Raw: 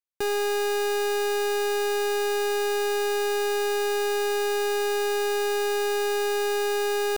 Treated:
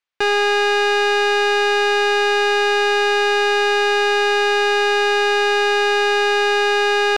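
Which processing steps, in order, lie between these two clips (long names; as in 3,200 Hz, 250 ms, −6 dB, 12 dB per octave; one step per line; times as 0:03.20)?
low-pass filter 3,200 Hz 12 dB per octave
tilt shelving filter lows −7.5 dB, about 630 Hz
level +9 dB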